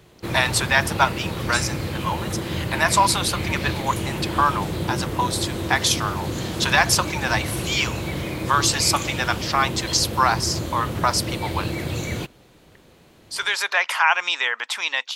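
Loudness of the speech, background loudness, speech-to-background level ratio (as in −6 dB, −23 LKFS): −22.0 LKFS, −27.5 LKFS, 5.5 dB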